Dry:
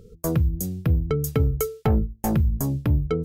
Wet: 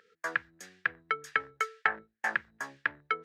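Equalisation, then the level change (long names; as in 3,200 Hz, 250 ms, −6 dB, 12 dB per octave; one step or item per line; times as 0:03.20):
high-pass with resonance 1,700 Hz, resonance Q 6.6
head-to-tape spacing loss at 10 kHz 30 dB
+7.0 dB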